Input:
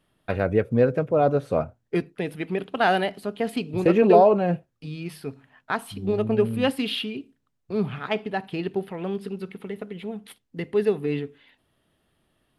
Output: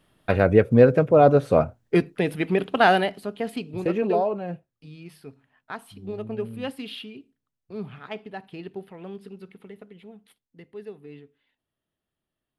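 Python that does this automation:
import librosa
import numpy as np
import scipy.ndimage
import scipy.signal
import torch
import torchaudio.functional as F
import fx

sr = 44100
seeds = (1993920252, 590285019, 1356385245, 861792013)

y = fx.gain(x, sr, db=fx.line((2.74, 5.0), (3.2, -1.0), (4.37, -9.0), (9.63, -9.0), (10.77, -17.0)))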